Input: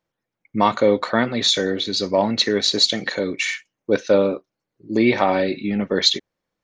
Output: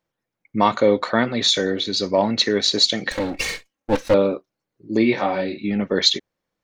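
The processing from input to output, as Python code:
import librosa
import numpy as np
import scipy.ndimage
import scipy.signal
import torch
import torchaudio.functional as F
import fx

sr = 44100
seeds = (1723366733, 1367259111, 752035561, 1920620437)

y = fx.lower_of_two(x, sr, delay_ms=3.7, at=(3.11, 4.14))
y = fx.detune_double(y, sr, cents=28, at=(5.03, 5.62), fade=0.02)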